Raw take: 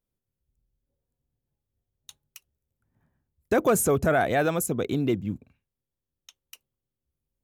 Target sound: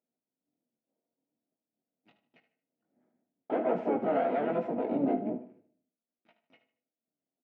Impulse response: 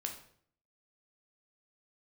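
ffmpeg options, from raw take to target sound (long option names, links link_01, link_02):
-filter_complex "[0:a]aeval=exprs='if(lt(val(0),0),0.251*val(0),val(0))':channel_layout=same,aecho=1:1:6.3:0.42,alimiter=limit=-20dB:level=0:latency=1:release=52,flanger=delay=16:depth=6.2:speed=1.3,asplit=4[link_01][link_02][link_03][link_04];[link_02]asetrate=33038,aresample=44100,atempo=1.33484,volume=-4dB[link_05];[link_03]asetrate=55563,aresample=44100,atempo=0.793701,volume=-7dB[link_06];[link_04]asetrate=88200,aresample=44100,atempo=0.5,volume=-4dB[link_07];[link_01][link_05][link_06][link_07]amix=inputs=4:normalize=0,highpass=frequency=210:width=0.5412,highpass=frequency=210:width=1.3066,equalizer=frequency=250:width_type=q:width=4:gain=9,equalizer=frequency=470:width_type=q:width=4:gain=3,equalizer=frequency=690:width_type=q:width=4:gain=10,equalizer=frequency=1100:width_type=q:width=4:gain=-10,equalizer=frequency=1700:width_type=q:width=4:gain=-7,lowpass=frequency=2100:width=0.5412,lowpass=frequency=2100:width=1.3066,aecho=1:1:76|152|228:0.251|0.0779|0.0241,asplit=2[link_08][link_09];[1:a]atrim=start_sample=2205,lowshelf=frequency=110:gain=10[link_10];[link_09][link_10]afir=irnorm=-1:irlink=0,volume=-5dB[link_11];[link_08][link_11]amix=inputs=2:normalize=0,volume=-4dB"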